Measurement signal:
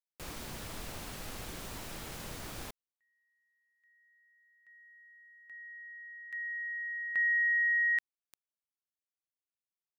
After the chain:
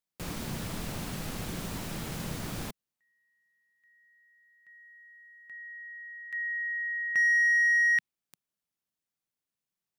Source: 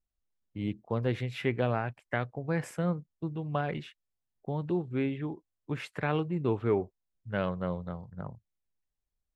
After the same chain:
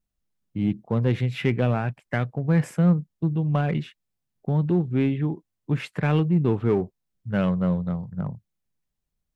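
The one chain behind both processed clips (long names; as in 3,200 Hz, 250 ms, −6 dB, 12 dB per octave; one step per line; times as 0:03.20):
dynamic equaliser 2,700 Hz, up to +4 dB, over −42 dBFS, Q 1.3
in parallel at −5 dB: hard clipping −29 dBFS
on the sum: parametric band 170 Hz +9.5 dB 1.4 octaves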